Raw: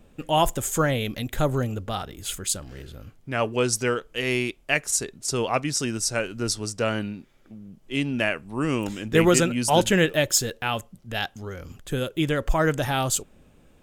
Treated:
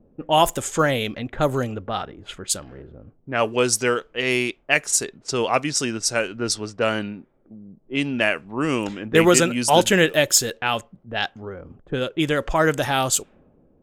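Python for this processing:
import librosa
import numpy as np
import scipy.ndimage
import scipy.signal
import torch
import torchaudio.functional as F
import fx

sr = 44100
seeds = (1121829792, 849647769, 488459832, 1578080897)

y = fx.low_shelf(x, sr, hz=140.0, db=-11.5)
y = fx.env_lowpass(y, sr, base_hz=440.0, full_db=-21.5)
y = y * 10.0 ** (4.5 / 20.0)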